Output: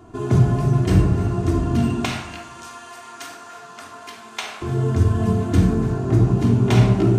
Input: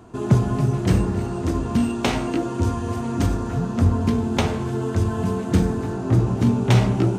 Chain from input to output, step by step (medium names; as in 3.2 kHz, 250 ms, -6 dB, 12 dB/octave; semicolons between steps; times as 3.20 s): 2.05–4.62 s: high-pass 1.2 kHz 12 dB/octave; simulated room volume 2500 m³, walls furnished, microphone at 3.2 m; trim -2.5 dB